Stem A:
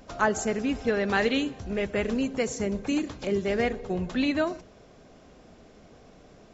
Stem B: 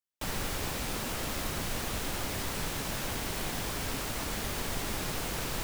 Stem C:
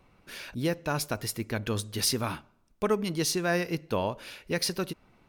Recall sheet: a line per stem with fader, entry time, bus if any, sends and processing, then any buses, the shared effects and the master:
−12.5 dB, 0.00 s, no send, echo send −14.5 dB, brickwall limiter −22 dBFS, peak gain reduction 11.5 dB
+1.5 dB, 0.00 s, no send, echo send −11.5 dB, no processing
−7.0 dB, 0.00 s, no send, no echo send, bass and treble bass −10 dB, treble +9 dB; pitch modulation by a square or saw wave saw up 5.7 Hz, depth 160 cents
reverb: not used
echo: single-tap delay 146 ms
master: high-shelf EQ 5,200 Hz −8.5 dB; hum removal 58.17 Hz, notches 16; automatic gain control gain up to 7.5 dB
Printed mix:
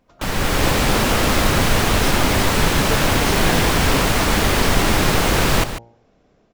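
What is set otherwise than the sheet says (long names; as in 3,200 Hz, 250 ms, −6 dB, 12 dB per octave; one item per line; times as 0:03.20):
stem B +1.5 dB → +12.5 dB
stem C: missing bass and treble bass −10 dB, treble +9 dB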